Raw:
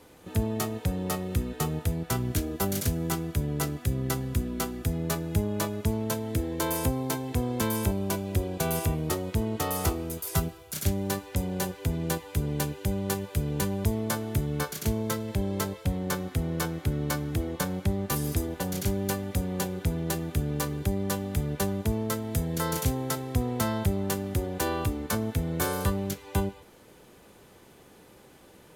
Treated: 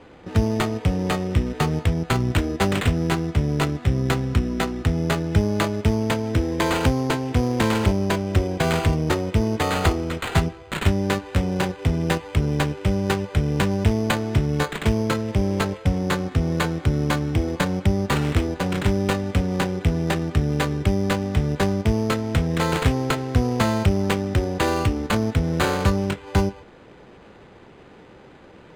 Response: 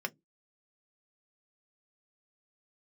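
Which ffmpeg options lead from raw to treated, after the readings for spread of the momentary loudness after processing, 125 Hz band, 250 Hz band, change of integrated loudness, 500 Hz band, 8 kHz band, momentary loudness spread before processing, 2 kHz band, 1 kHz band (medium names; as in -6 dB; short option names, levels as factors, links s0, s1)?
3 LU, +7.5 dB, +7.5 dB, +7.0 dB, +7.5 dB, -1.5 dB, 3 LU, +10.0 dB, +8.0 dB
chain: -af "acrusher=samples=8:mix=1:aa=0.000001,adynamicsmooth=sensitivity=8:basefreq=3900,volume=2.37"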